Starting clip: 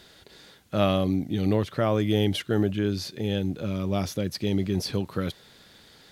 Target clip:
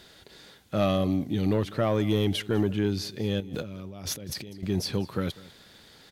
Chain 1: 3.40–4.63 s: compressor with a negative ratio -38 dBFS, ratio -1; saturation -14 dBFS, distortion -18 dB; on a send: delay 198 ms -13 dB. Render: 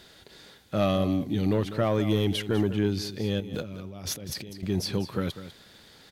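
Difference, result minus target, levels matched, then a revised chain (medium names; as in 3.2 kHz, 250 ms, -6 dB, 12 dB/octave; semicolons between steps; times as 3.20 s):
echo-to-direct +7.5 dB
3.40–4.63 s: compressor with a negative ratio -38 dBFS, ratio -1; saturation -14 dBFS, distortion -18 dB; on a send: delay 198 ms -20.5 dB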